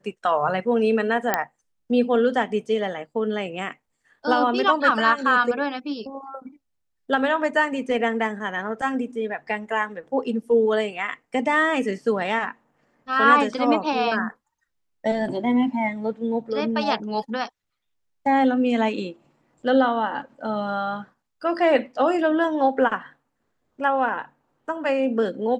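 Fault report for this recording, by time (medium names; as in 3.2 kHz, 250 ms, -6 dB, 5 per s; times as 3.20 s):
1.34 s: pop -5 dBFS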